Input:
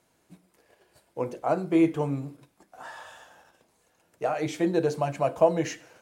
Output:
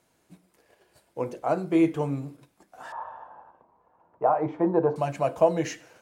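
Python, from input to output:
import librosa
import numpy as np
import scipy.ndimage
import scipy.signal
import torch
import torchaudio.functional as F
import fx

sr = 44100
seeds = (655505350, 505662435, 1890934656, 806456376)

y = fx.lowpass_res(x, sr, hz=980.0, q=4.7, at=(2.92, 4.96))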